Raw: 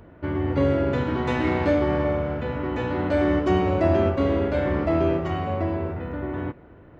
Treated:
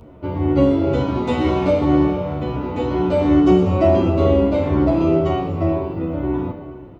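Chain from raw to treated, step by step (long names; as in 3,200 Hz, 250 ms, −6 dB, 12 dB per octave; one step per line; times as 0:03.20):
parametric band 1,700 Hz −13 dB 0.54 octaves
notch filter 1,700 Hz, Q 20
four-comb reverb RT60 1.6 s, combs from 27 ms, DRR 6.5 dB
barber-pole flanger 10.2 ms −2.1 Hz
level +8 dB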